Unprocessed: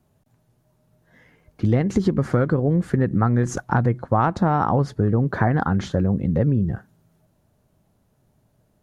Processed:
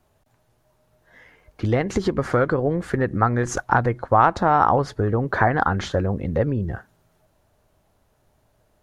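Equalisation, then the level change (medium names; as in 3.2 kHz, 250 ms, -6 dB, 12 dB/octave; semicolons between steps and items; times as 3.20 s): peaking EQ 170 Hz -13.5 dB 2 oct; treble shelf 5.3 kHz -5.5 dB; +6.5 dB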